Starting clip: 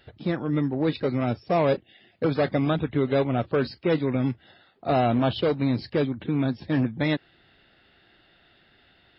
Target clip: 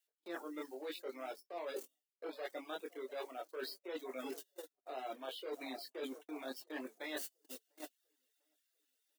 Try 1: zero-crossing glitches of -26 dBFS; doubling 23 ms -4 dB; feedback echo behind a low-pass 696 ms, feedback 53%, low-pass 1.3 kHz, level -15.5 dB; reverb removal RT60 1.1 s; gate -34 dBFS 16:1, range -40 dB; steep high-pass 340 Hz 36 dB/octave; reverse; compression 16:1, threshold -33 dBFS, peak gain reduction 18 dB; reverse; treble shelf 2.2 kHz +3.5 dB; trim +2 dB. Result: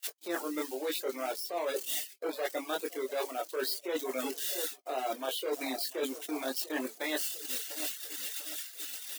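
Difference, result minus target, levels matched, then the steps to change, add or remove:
compression: peak gain reduction -10 dB; zero-crossing glitches: distortion +10 dB
change: zero-crossing glitches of -36.5 dBFS; change: compression 16:1, threshold -43.5 dBFS, peak gain reduction 27.5 dB

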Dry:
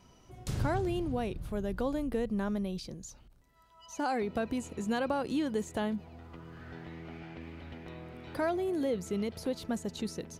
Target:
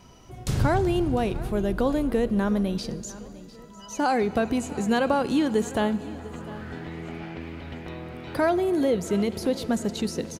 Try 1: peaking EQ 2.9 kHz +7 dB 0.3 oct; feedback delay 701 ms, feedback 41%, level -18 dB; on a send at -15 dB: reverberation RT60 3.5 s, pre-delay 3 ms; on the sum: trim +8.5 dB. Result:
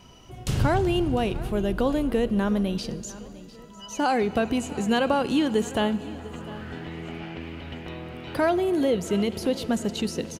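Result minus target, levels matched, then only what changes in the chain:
4 kHz band +3.5 dB
remove: peaking EQ 2.9 kHz +7 dB 0.3 oct

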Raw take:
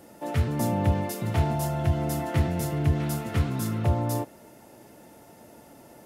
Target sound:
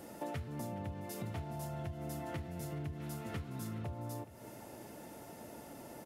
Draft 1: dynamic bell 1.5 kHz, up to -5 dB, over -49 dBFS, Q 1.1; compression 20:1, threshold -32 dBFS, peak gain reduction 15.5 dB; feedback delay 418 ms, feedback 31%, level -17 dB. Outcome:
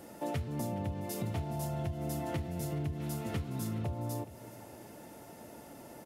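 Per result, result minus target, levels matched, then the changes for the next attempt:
compression: peak gain reduction -6 dB; 2 kHz band -4.5 dB
change: compression 20:1, threshold -38 dBFS, peak gain reduction 21.5 dB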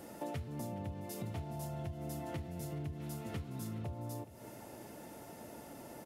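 2 kHz band -2.5 dB
remove: dynamic bell 1.5 kHz, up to -5 dB, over -49 dBFS, Q 1.1

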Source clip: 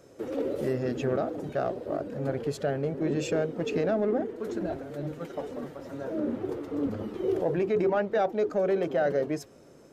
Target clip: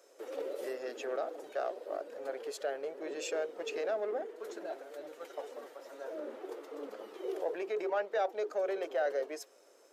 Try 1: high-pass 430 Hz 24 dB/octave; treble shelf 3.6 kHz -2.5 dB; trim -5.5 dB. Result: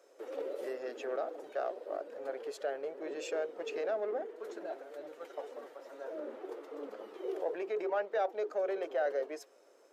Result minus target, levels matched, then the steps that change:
8 kHz band -5.5 dB
change: treble shelf 3.6 kHz +5 dB

